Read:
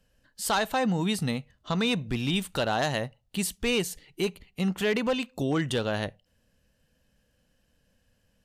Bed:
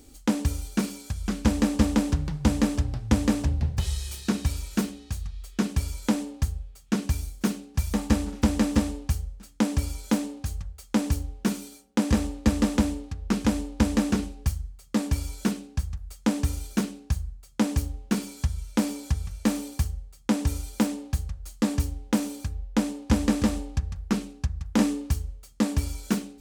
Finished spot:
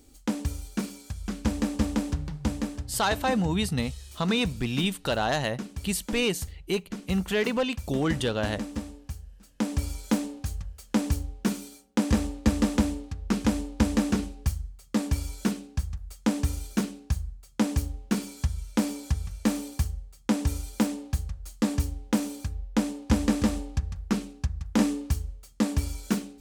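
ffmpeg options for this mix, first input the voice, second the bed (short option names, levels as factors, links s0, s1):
-filter_complex "[0:a]adelay=2500,volume=1.06[s0];[1:a]volume=1.88,afade=t=out:st=2.3:d=0.56:silence=0.473151,afade=t=in:st=9.26:d=0.67:silence=0.316228[s1];[s0][s1]amix=inputs=2:normalize=0"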